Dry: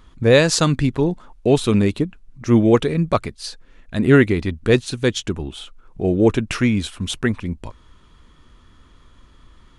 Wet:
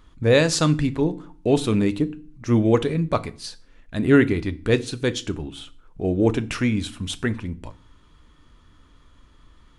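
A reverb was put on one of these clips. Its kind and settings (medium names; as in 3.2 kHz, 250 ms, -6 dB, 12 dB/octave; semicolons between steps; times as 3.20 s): FDN reverb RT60 0.43 s, low-frequency decay 1.45×, high-frequency decay 0.9×, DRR 12 dB; trim -4 dB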